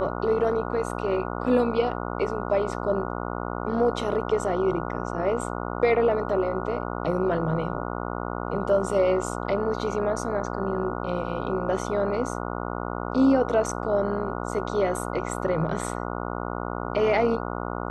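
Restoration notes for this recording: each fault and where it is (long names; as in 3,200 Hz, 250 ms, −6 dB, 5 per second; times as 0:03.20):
mains buzz 60 Hz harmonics 24 −31 dBFS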